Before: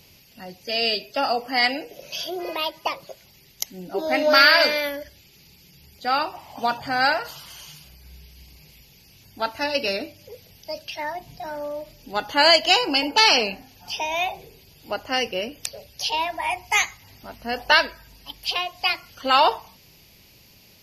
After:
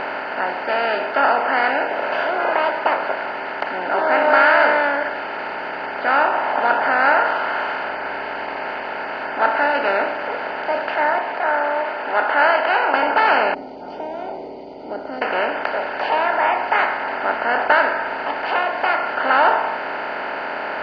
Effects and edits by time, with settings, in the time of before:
0:11.18–0:12.94: band-pass filter 570–3,200 Hz
0:13.54–0:15.22: elliptic band-stop filter 320–8,200 Hz, stop band 60 dB
whole clip: compressor on every frequency bin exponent 0.2; low-pass filter 2,100 Hz 12 dB per octave; every bin expanded away from the loudest bin 1.5 to 1; level −5.5 dB

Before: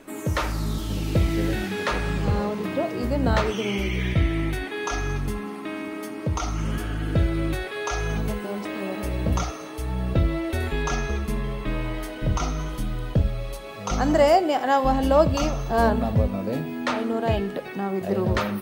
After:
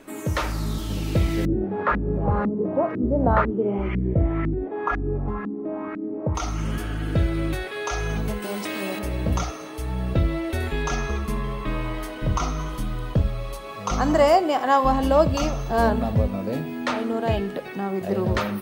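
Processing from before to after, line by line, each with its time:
0:01.45–0:06.35: auto-filter low-pass saw up 2 Hz 220–1,700 Hz
0:08.42–0:08.99: high-shelf EQ 2,600 Hz +11 dB
0:10.99–0:15.09: parametric band 1,100 Hz +7.5 dB 0.31 octaves

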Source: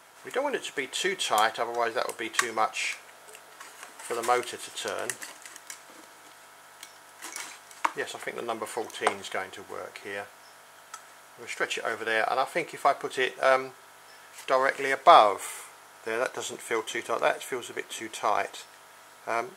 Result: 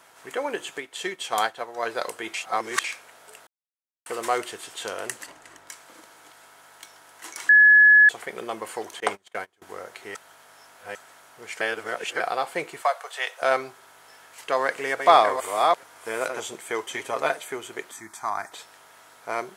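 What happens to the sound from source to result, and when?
0:00.78–0:01.83: expander for the loud parts, over −45 dBFS
0:02.34–0:02.84: reverse
0:03.47–0:04.06: silence
0:05.26–0:05.69: spectral tilt −2.5 dB per octave
0:07.49–0:08.09: beep over 1,700 Hz −10 dBFS
0:09.00–0:09.62: noise gate −36 dBFS, range −27 dB
0:10.15–0:10.95: reverse
0:11.61–0:12.20: reverse
0:12.82–0:13.42: Butterworth high-pass 520 Hz 48 dB per octave
0:14.54–0:16.40: delay that plays each chunk backwards 432 ms, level −5 dB
0:16.93–0:17.37: comb filter 7.4 ms
0:17.91–0:18.52: phaser with its sweep stopped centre 1,200 Hz, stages 4

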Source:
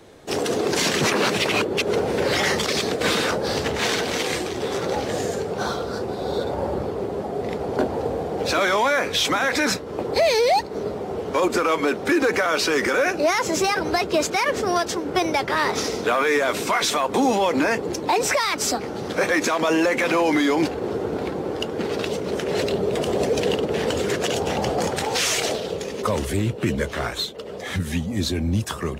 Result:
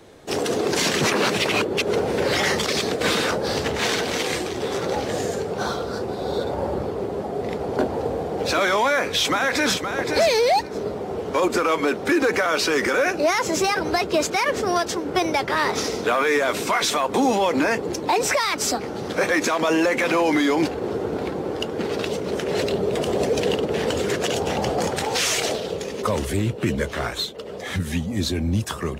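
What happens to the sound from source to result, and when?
0:09.01–0:09.91: delay throw 520 ms, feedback 15%, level −6.5 dB

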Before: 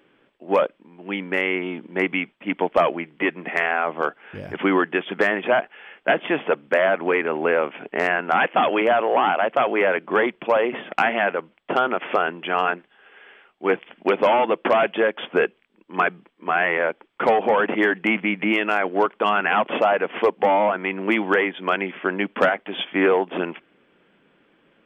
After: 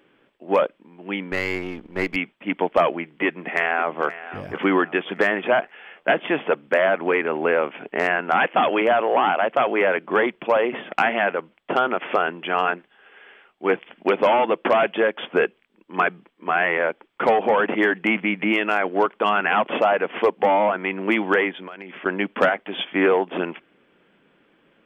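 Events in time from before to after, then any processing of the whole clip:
0:01.32–0:02.16: gain on one half-wave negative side −7 dB
0:03.25–0:04.05: delay throw 530 ms, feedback 45%, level −15 dB
0:21.51–0:22.06: downward compressor 8 to 1, threshold −33 dBFS

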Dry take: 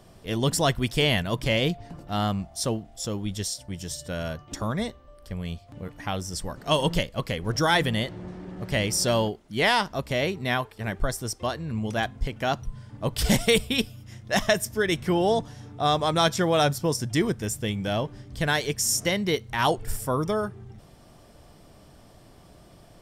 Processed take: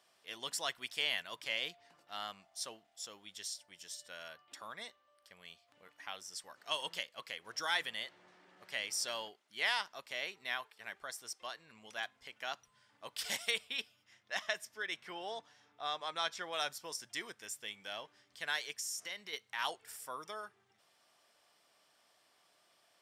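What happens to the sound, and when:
0:04.28–0:04.81: parametric band 6,200 Hz −9.5 dB 0.31 octaves
0:13.51–0:16.53: high-shelf EQ 6,500 Hz −11 dB
0:18.77–0:19.33: downward compressor, threshold −25 dBFS
whole clip: Bessel high-pass filter 2,300 Hz, order 2; spectral tilt −3 dB per octave; level −2.5 dB

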